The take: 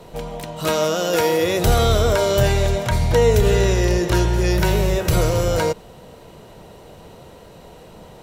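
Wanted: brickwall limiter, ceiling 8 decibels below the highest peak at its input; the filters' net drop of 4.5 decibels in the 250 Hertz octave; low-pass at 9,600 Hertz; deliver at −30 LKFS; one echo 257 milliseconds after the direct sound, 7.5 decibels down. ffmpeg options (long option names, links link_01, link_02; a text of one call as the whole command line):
ffmpeg -i in.wav -af "lowpass=9600,equalizer=frequency=250:width_type=o:gain=-8.5,alimiter=limit=-13.5dB:level=0:latency=1,aecho=1:1:257:0.422,volume=-7.5dB" out.wav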